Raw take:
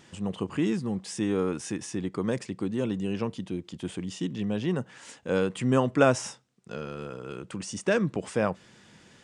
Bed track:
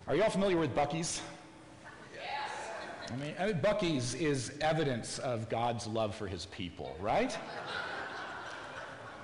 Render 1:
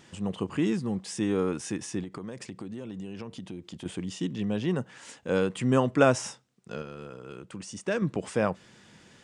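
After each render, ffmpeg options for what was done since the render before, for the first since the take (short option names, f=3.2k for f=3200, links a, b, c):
-filter_complex "[0:a]asettb=1/sr,asplit=3[a][b][c];[a]atrim=end=2.034[d];[b]atrim=start=2.03:end=3.86,asetpts=PTS-STARTPTS,afade=t=in:d=0.004:c=qsin,afade=t=out:st=1.826:d=0.004:c=qsin,acompressor=threshold=-34dB:ratio=10:attack=3.2:release=140:knee=1:detection=peak[e];[c]atrim=start=3.856[f];[d][e]acrossfade=d=0.004:c1=hsin:c2=qsin[g];[g][f]acrossfade=d=0.004:c1=qsin:c2=hsin,asplit=3[h][i][j];[h]atrim=end=6.822[k];[i]atrim=start=6.818:end=8.022,asetpts=PTS-STARTPTS,volume=-4.5dB[l];[j]atrim=start=8.018[m];[k][l]acrossfade=d=0.004:c1=hsin:c2=hsin[n];[n][m]acrossfade=d=0.004:c1=hsin:c2=hsin"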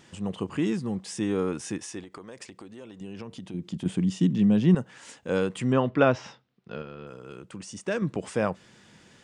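-filter_complex "[0:a]asettb=1/sr,asplit=3[a][b][c];[a]atrim=end=1.784[d];[b]atrim=start=1.78:end=3.01,asetpts=PTS-STARTPTS,afade=t=in:d=0.004:c=qsin,afade=t=out:st=1.226:d=0.004:c=qsin,equalizer=f=150:t=o:w=1.8:g=-11.5[e];[c]atrim=start=3.006[f];[d][e]acrossfade=d=0.004:c1=hsin:c2=qsin[g];[g][f]acrossfade=d=0.004:c1=qsin:c2=hsin,asettb=1/sr,asplit=3[h][i][j];[h]atrim=end=3.544[k];[i]atrim=start=3.54:end=4.75,asetpts=PTS-STARTPTS,afade=t=in:d=0.004:c=qsin,afade=t=out:st=1.206:d=0.004:c=qsin,equalizer=f=180:t=o:w=1.2:g=11.5[l];[j]atrim=start=4.746[m];[k][l]acrossfade=d=0.004:c1=hsin:c2=qsin[n];[n][m]acrossfade=d=0.004:c1=qsin:c2=hsin,asettb=1/sr,asplit=3[o][p][q];[o]atrim=end=5.724[r];[p]atrim=start=5.72:end=7.07,asetpts=PTS-STARTPTS,afade=t=in:d=0.004:c=qsin,afade=t=out:st=1.346:d=0.004:c=qsin,lowpass=f=4.3k:w=0.5412,lowpass=f=4.3k:w=1.3066[s];[q]atrim=start=7.066[t];[r][s]acrossfade=d=0.004:c1=hsin:c2=qsin[u];[u][t]acrossfade=d=0.004:c1=qsin:c2=hsin"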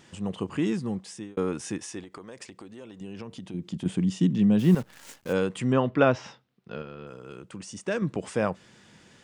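-filter_complex "[0:a]asettb=1/sr,asplit=3[a][b][c];[a]atrim=end=4.594[d];[b]atrim=start=4.59:end=5.33,asetpts=PTS-STARTPTS,afade=t=in:d=0.004:c=qsin,afade=t=out:st=0.736:d=0.004:c=qsin,acrusher=bits=8:dc=4:mix=0:aa=0.000001[e];[c]atrim=start=5.326[f];[d][e]acrossfade=d=0.004:c1=hsin:c2=qsin[g];[g][f]acrossfade=d=0.004:c1=qsin:c2=hsin,asplit=2[h][i];[h]atrim=end=1.37,asetpts=PTS-STARTPTS,afade=t=out:st=0.91:d=0.46[j];[i]atrim=start=1.37,asetpts=PTS-STARTPTS,afade=t=in:d=0.004:c=hsin[k];[j][k]concat=n=2:v=0:a=1"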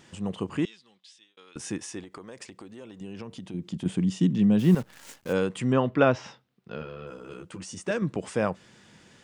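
-filter_complex "[0:a]asettb=1/sr,asplit=3[a][b][c];[a]atrim=end=0.654[d];[b]atrim=start=0.65:end=1.56,asetpts=PTS-STARTPTS,afade=t=in:d=0.004:c=qsin,afade=t=out:st=0.906:d=0.004:c=qsin,bandpass=f=3.6k:t=q:w=3.1[e];[c]atrim=start=1.556[f];[d][e]acrossfade=d=0.004:c1=hsin:c2=qsin[g];[g][f]acrossfade=d=0.004:c1=qsin:c2=hsin,asettb=1/sr,asplit=3[h][i][j];[h]atrim=end=6.804[k];[i]atrim=start=6.8:end=7.91,asetpts=PTS-STARTPTS,afade=t=in:d=0.004:c=qsin,afade=t=out:st=1.106:d=0.004:c=qsin,asplit=2[l][m];[m]adelay=12,volume=-3dB[n];[l][n]amix=inputs=2:normalize=0,atrim=end_sample=48951[o];[j]atrim=start=7.906[p];[k][o]acrossfade=d=0.004:c1=hsin:c2=qsin[q];[q][p]acrossfade=d=0.004:c1=qsin:c2=hsin"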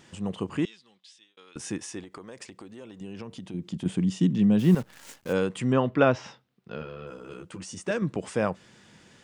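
-af anull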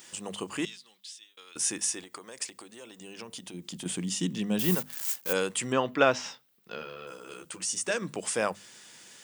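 -af "aemphasis=mode=production:type=riaa,bandreject=f=50:t=h:w=6,bandreject=f=100:t=h:w=6,bandreject=f=150:t=h:w=6,bandreject=f=200:t=h:w=6,bandreject=f=250:t=h:w=6"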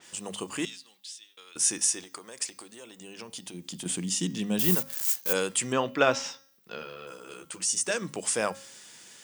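-af "bandreject=f=271.8:t=h:w=4,bandreject=f=543.6:t=h:w=4,bandreject=f=815.4:t=h:w=4,bandreject=f=1.0872k:t=h:w=4,bandreject=f=1.359k:t=h:w=4,bandreject=f=1.6308k:t=h:w=4,bandreject=f=1.9026k:t=h:w=4,bandreject=f=2.1744k:t=h:w=4,bandreject=f=2.4462k:t=h:w=4,bandreject=f=2.718k:t=h:w=4,bandreject=f=2.9898k:t=h:w=4,bandreject=f=3.2616k:t=h:w=4,bandreject=f=3.5334k:t=h:w=4,bandreject=f=3.8052k:t=h:w=4,bandreject=f=4.077k:t=h:w=4,bandreject=f=4.3488k:t=h:w=4,bandreject=f=4.6206k:t=h:w=4,bandreject=f=4.8924k:t=h:w=4,bandreject=f=5.1642k:t=h:w=4,bandreject=f=5.436k:t=h:w=4,bandreject=f=5.7078k:t=h:w=4,bandreject=f=5.9796k:t=h:w=4,bandreject=f=6.2514k:t=h:w=4,bandreject=f=6.5232k:t=h:w=4,adynamicequalizer=threshold=0.00501:dfrequency=4200:dqfactor=0.7:tfrequency=4200:tqfactor=0.7:attack=5:release=100:ratio=0.375:range=2.5:mode=boostabove:tftype=highshelf"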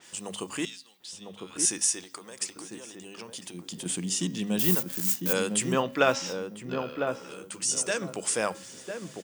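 -filter_complex "[0:a]asplit=2[a][b];[b]adelay=1002,lowpass=f=830:p=1,volume=-4dB,asplit=2[c][d];[d]adelay=1002,lowpass=f=830:p=1,volume=0.27,asplit=2[e][f];[f]adelay=1002,lowpass=f=830:p=1,volume=0.27,asplit=2[g][h];[h]adelay=1002,lowpass=f=830:p=1,volume=0.27[i];[a][c][e][g][i]amix=inputs=5:normalize=0"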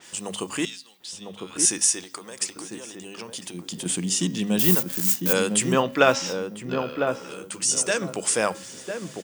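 -af "volume=5dB"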